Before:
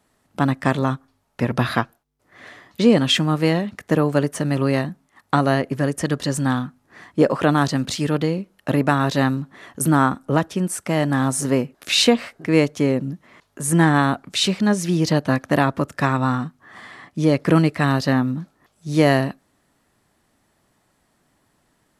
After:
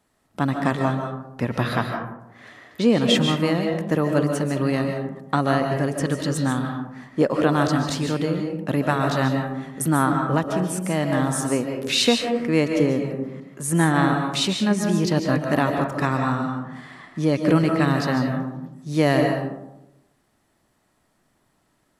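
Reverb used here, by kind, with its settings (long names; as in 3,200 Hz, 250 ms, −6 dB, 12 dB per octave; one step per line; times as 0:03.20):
comb and all-pass reverb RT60 0.91 s, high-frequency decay 0.35×, pre-delay 105 ms, DRR 3.5 dB
level −3.5 dB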